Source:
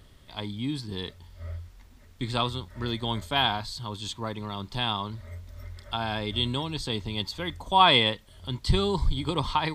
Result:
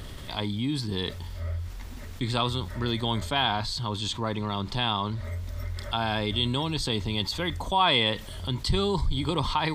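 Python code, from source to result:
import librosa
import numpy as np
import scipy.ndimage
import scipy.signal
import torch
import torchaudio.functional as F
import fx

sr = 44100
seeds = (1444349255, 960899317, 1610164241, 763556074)

y = fx.high_shelf(x, sr, hz=10000.0, db=-10.0, at=(3.2, 5.24))
y = fx.env_flatten(y, sr, amount_pct=50)
y = y * 10.0 ** (-5.0 / 20.0)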